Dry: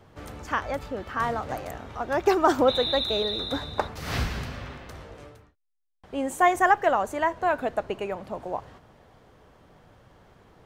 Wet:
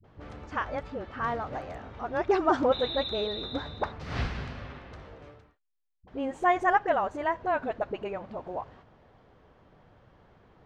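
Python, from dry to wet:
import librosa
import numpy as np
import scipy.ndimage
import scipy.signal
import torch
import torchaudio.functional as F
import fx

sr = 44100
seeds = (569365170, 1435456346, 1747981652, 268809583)

y = fx.air_absorb(x, sr, metres=150.0)
y = fx.dispersion(y, sr, late='highs', ms=42.0, hz=370.0)
y = y * librosa.db_to_amplitude(-3.0)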